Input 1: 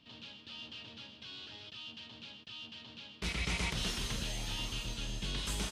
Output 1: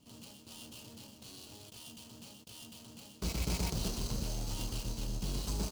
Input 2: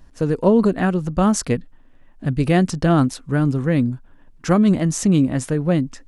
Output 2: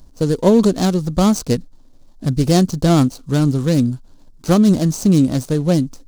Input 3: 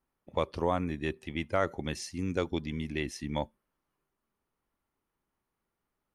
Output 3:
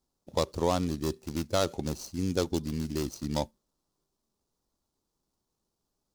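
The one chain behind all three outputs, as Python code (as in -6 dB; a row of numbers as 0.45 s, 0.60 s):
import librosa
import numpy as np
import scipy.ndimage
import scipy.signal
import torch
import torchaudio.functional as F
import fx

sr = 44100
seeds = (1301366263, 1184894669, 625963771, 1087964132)

y = scipy.signal.medfilt(x, 25)
y = fx.high_shelf_res(y, sr, hz=3500.0, db=12.5, q=1.5)
y = y * 10.0 ** (3.0 / 20.0)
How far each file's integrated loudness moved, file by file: -0.5 LU, +2.5 LU, +2.0 LU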